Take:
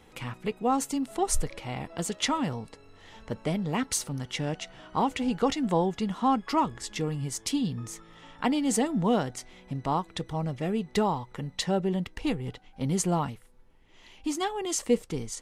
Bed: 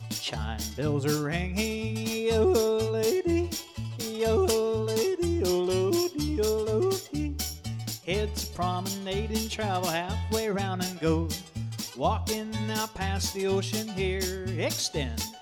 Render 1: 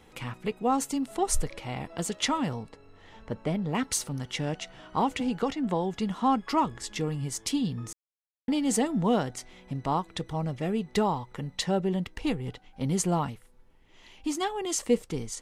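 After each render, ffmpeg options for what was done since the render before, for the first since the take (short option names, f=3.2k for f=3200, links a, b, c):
-filter_complex "[0:a]asettb=1/sr,asplit=3[a][b][c];[a]atrim=end=2.634[d];[b]atrim=start=2.63:end=3.75,asetpts=PTS-STARTPTS,afade=t=in:d=0.004:c=qsin,afade=t=out:st=1.116:d=0.004:c=qsin,highshelf=f=3.5k:g=-9[e];[c]atrim=start=3.746[f];[d][e]acrossfade=d=0.004:c1=hsin:c2=qsin[g];[g][f]acrossfade=d=0.004:c1=qsin:c2=hsin,asettb=1/sr,asplit=3[h][i][j];[h]atrim=end=5.204[k];[i]atrim=start=5.2:end=5.94,asetpts=PTS-STARTPTS,afade=t=in:d=0.004:c=qsin,afade=t=out:st=0.736:d=0.004:c=qsin,acrossover=split=120|1900|5200[l][m][n][o];[l]acompressor=threshold=-48dB:ratio=3[p];[m]acompressor=threshold=-24dB:ratio=3[q];[n]acompressor=threshold=-45dB:ratio=3[r];[o]acompressor=threshold=-58dB:ratio=3[s];[p][q][r][s]amix=inputs=4:normalize=0[t];[j]atrim=start=5.936[u];[k][t]acrossfade=d=0.004:c1=hsin:c2=qsin[v];[v][u]acrossfade=d=0.004:c1=qsin:c2=hsin,asplit=3[w][x][y];[w]atrim=end=7.93,asetpts=PTS-STARTPTS,afade=t=out:st=7.926:d=0.004:c=hsin[z];[x]atrim=start=7.93:end=8.48,asetpts=PTS-STARTPTS,volume=0[aa];[y]atrim=start=8.48,asetpts=PTS-STARTPTS,afade=t=in:d=0.004:c=hsin[ab];[z][aa][ab]concat=n=3:v=0:a=1"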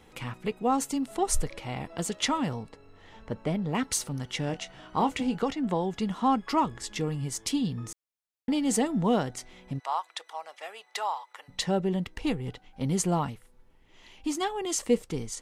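-filter_complex "[0:a]asettb=1/sr,asplit=3[a][b][c];[a]atrim=end=4.474[d];[b]atrim=start=4.47:end=5.38,asetpts=PTS-STARTPTS,afade=t=in:d=0.004:c=qsin,afade=t=out:st=0.906:d=0.004:c=qsin,asplit=2[e][f];[f]adelay=23,volume=-11dB[g];[e][g]amix=inputs=2:normalize=0,atrim=end_sample=40131[h];[c]atrim=start=5.376[i];[d][h]acrossfade=d=0.004:c1=hsin:c2=qsin[j];[j][i]acrossfade=d=0.004:c1=qsin:c2=hsin,asplit=3[k][l][m];[k]afade=t=out:st=9.78:d=0.02[n];[l]highpass=f=720:w=0.5412,highpass=f=720:w=1.3066,afade=t=in:st=9.78:d=0.02,afade=t=out:st=11.48:d=0.02[o];[m]afade=t=in:st=11.48:d=0.02[p];[n][o][p]amix=inputs=3:normalize=0"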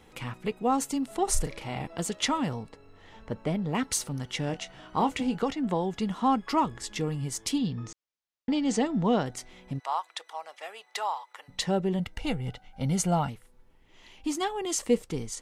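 -filter_complex "[0:a]asettb=1/sr,asplit=3[a][b][c];[a]atrim=end=1.244[d];[b]atrim=start=1.24:end=1.87,asetpts=PTS-STARTPTS,afade=t=in:d=0.004:c=qsin,afade=t=out:st=0.626:d=0.004:c=qsin,asplit=2[e][f];[f]adelay=37,volume=-7dB[g];[e][g]amix=inputs=2:normalize=0,atrim=end_sample=27783[h];[c]atrim=start=1.866[i];[d][h]acrossfade=d=0.004:c1=hsin:c2=qsin[j];[j][i]acrossfade=d=0.004:c1=qsin:c2=hsin,asettb=1/sr,asplit=3[k][l][m];[k]atrim=end=7.584[n];[l]atrim=start=7.58:end=9.26,asetpts=PTS-STARTPTS,afade=t=in:d=0.004:c=qsin,afade=t=out:st=1.676:d=0.004:c=qsin,lowpass=f=6.6k:w=0.5412,lowpass=f=6.6k:w=1.3066[o];[m]atrim=start=9.256[p];[n][o]acrossfade=d=0.004:c1=hsin:c2=qsin[q];[q][p]acrossfade=d=0.004:c1=qsin:c2=hsin,asettb=1/sr,asplit=3[r][s][t];[r]atrim=end=11.994[u];[s]atrim=start=11.99:end=13.29,asetpts=PTS-STARTPTS,afade=t=in:d=0.004:c=qsin,afade=t=out:st=1.296:d=0.004:c=qsin,aecho=1:1:1.4:0.51,atrim=end_sample=57330[v];[t]atrim=start=13.286[w];[u][v]acrossfade=d=0.004:c1=hsin:c2=qsin[x];[x][w]acrossfade=d=0.004:c1=qsin:c2=hsin"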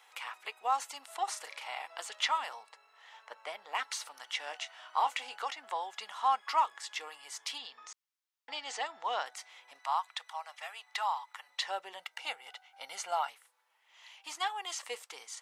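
-filter_complex "[0:a]acrossover=split=4600[a][b];[b]acompressor=threshold=-45dB:ratio=4:attack=1:release=60[c];[a][c]amix=inputs=2:normalize=0,highpass=f=800:w=0.5412,highpass=f=800:w=1.3066"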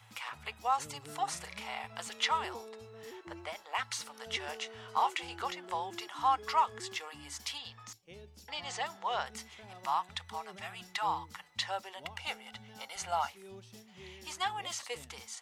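-filter_complex "[1:a]volume=-23.5dB[a];[0:a][a]amix=inputs=2:normalize=0"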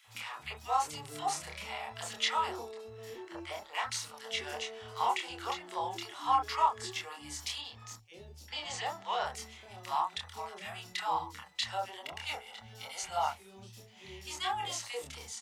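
-filter_complex "[0:a]asplit=2[a][b];[b]adelay=27,volume=-3dB[c];[a][c]amix=inputs=2:normalize=0,acrossover=split=220|1500[d][e][f];[e]adelay=40[g];[d]adelay=70[h];[h][g][f]amix=inputs=3:normalize=0"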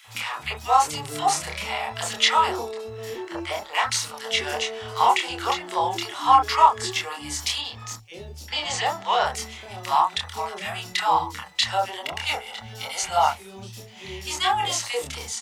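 -af "volume=12dB"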